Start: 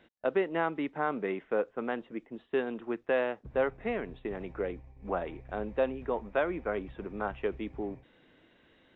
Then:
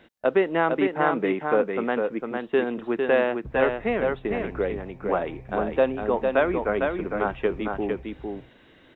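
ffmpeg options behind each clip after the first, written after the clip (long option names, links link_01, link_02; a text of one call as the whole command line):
ffmpeg -i in.wav -af "aecho=1:1:454:0.596,volume=7.5dB" out.wav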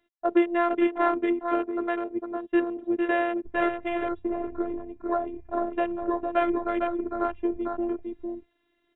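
ffmpeg -i in.wav -af "afwtdn=0.0251,afftfilt=real='hypot(re,im)*cos(PI*b)':imag='0':win_size=512:overlap=0.75,volume=1.5dB" out.wav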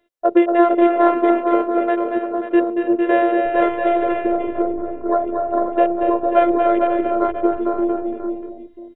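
ffmpeg -i in.wav -filter_complex "[0:a]equalizer=frequency=520:width_type=o:width=0.61:gain=13.5,asplit=2[link_01][link_02];[link_02]aecho=0:1:232|280|334|535:0.501|0.251|0.126|0.299[link_03];[link_01][link_03]amix=inputs=2:normalize=0,volume=4dB" out.wav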